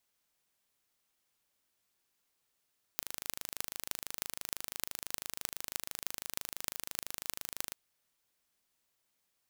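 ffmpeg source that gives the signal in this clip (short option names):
-f lavfi -i "aevalsrc='0.531*eq(mod(n,1696),0)*(0.5+0.5*eq(mod(n,13568),0))':d=4.75:s=44100"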